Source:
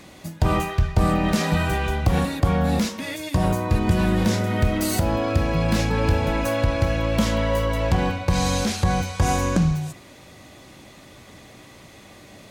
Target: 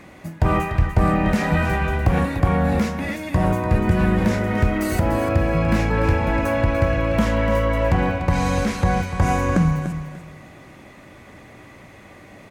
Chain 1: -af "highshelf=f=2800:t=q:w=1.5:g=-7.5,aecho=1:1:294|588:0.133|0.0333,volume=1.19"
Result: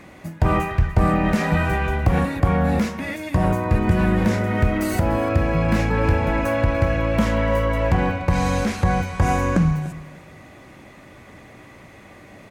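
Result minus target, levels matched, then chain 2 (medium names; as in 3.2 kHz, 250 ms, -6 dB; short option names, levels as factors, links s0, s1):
echo-to-direct -7.5 dB
-af "highshelf=f=2800:t=q:w=1.5:g=-7.5,aecho=1:1:294|588|882:0.316|0.0791|0.0198,volume=1.19"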